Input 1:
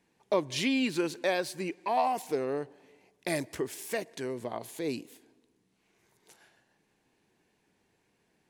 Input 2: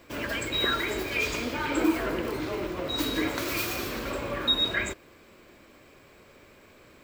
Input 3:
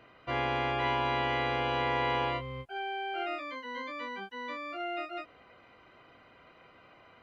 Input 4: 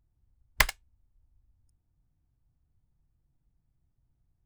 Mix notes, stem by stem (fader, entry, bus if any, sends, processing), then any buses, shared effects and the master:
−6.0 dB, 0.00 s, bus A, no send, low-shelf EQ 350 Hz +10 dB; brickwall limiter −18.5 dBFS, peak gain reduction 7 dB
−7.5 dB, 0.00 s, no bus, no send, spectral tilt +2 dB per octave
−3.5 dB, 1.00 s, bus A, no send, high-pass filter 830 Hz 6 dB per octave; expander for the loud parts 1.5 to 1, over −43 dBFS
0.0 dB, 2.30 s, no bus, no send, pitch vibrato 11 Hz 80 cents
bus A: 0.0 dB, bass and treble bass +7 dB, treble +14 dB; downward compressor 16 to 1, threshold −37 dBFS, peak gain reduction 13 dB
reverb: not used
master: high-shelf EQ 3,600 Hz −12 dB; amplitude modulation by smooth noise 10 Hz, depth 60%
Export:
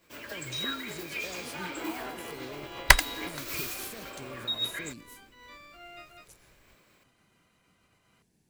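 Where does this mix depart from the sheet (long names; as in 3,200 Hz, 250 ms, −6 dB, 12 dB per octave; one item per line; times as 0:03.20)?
stem 4 0.0 dB → +9.5 dB
master: missing high-shelf EQ 3,600 Hz −12 dB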